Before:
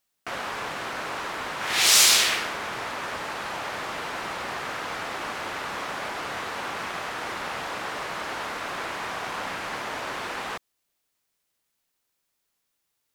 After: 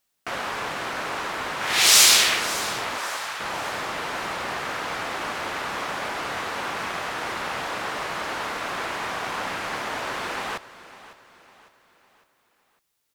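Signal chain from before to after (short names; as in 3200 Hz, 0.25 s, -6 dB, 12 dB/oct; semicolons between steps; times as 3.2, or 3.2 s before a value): 2.97–3.39 HPF 410 Hz -> 1200 Hz 12 dB/oct; feedback echo 0.554 s, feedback 44%, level -16.5 dB; gain +2.5 dB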